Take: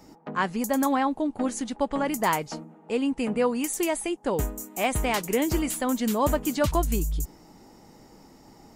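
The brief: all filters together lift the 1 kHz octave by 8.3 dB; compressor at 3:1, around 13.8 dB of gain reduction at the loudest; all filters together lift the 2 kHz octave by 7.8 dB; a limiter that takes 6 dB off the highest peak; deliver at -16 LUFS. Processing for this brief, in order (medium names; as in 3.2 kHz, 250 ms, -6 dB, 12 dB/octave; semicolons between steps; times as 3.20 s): peaking EQ 1 kHz +8.5 dB; peaking EQ 2 kHz +7 dB; compression 3:1, threshold -32 dBFS; trim +18.5 dB; peak limiter -5 dBFS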